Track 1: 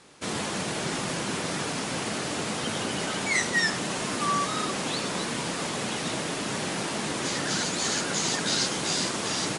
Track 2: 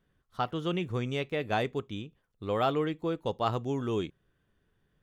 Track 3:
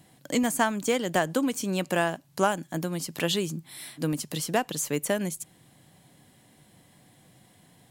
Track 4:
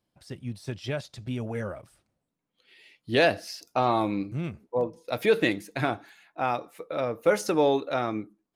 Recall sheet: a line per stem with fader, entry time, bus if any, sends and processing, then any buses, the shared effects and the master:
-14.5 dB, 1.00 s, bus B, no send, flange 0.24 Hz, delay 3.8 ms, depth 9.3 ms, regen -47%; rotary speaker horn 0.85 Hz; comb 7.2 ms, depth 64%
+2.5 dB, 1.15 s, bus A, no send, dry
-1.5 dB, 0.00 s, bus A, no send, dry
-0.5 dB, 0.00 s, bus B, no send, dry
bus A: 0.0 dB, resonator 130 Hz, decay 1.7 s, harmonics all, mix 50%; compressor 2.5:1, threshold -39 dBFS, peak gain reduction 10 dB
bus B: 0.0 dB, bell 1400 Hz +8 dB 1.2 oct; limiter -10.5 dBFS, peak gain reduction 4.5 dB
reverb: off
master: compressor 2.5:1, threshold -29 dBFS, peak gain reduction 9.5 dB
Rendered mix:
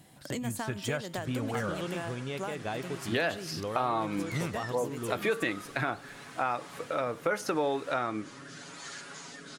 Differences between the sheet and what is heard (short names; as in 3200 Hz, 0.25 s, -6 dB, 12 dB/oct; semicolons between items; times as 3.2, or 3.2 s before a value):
stem 2 +2.5 dB -> +13.5 dB; stem 3 -1.5 dB -> +6.0 dB